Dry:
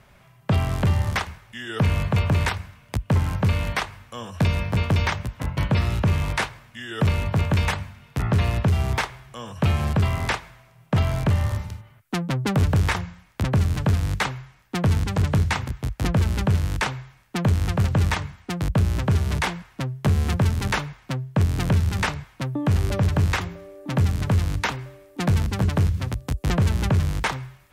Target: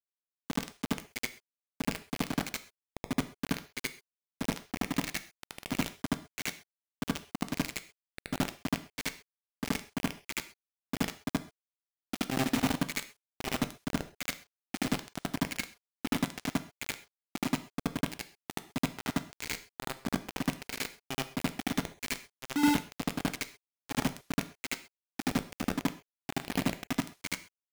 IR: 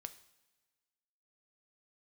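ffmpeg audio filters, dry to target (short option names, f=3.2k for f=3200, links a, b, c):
-filter_complex "[0:a]lowpass=f=4.2k:w=0.5412,lowpass=f=4.2k:w=1.3066,adynamicequalizer=threshold=0.0112:dfrequency=250:dqfactor=4.2:tfrequency=250:tqfactor=4.2:attack=5:release=100:ratio=0.375:range=2:mode=boostabove:tftype=bell,asplit=3[a][b][c];[a]bandpass=f=270:t=q:w=8,volume=0dB[d];[b]bandpass=f=2.29k:t=q:w=8,volume=-6dB[e];[c]bandpass=f=3.01k:t=q:w=8,volume=-9dB[f];[d][e][f]amix=inputs=3:normalize=0,acrusher=bits=4:mix=0:aa=0.000001,asplit=2[g][h];[1:a]atrim=start_sample=2205,atrim=end_sample=6174,adelay=75[i];[h][i]afir=irnorm=-1:irlink=0,volume=9.5dB[j];[g][j]amix=inputs=2:normalize=0,volume=-2dB"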